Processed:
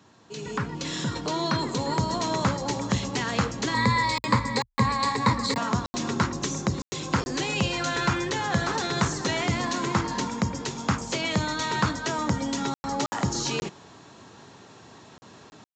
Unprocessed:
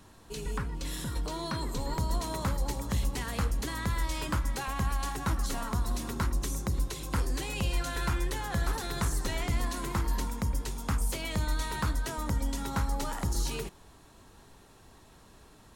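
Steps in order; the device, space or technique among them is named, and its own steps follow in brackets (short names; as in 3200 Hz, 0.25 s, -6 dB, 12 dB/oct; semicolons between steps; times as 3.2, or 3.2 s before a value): call with lost packets (HPF 110 Hz 24 dB/oct; downsampling 16000 Hz; AGC gain up to 9 dB; packet loss packets of 20 ms bursts); 3.74–5.58 ripple EQ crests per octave 0.96, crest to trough 14 dB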